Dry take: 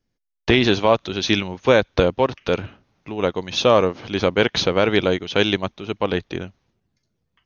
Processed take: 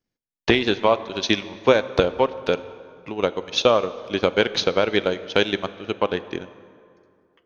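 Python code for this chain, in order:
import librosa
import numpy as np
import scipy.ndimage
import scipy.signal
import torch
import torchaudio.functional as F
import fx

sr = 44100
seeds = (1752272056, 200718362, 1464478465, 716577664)

y = fx.low_shelf(x, sr, hz=120.0, db=-10.5)
y = fx.transient(y, sr, attack_db=6, sustain_db=-10)
y = fx.rev_plate(y, sr, seeds[0], rt60_s=2.4, hf_ratio=0.6, predelay_ms=0, drr_db=14.0)
y = y * 10.0 ** (-4.0 / 20.0)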